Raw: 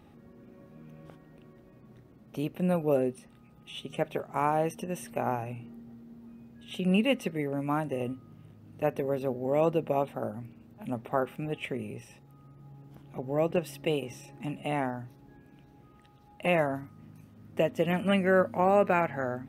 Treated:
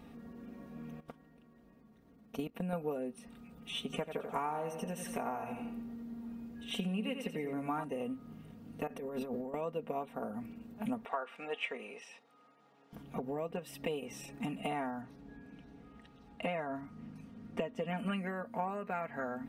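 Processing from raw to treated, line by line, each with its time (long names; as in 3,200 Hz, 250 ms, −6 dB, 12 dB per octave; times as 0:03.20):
0:01.00–0:02.73: output level in coarse steps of 16 dB
0:03.84–0:07.84: repeating echo 87 ms, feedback 39%, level −9 dB
0:08.87–0:09.54: compressor whose output falls as the input rises −37 dBFS
0:11.05–0:12.93: band-pass filter 670–5,700 Hz
0:15.01–0:17.98: high-frequency loss of the air 55 metres
whole clip: downward compressor 10 to 1, threshold −37 dBFS; comb filter 4.3 ms, depth 71%; dynamic equaliser 1,100 Hz, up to +4 dB, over −57 dBFS, Q 1.2; level +1 dB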